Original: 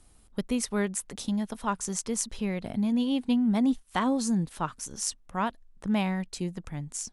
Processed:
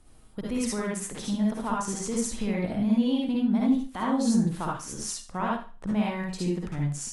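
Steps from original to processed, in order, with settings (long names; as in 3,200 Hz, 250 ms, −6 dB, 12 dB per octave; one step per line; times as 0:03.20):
high-shelf EQ 3,500 Hz −7.5 dB
brickwall limiter −23.5 dBFS, peak gain reduction 10.5 dB
convolution reverb RT60 0.40 s, pre-delay 49 ms, DRR −3.5 dB
level +1 dB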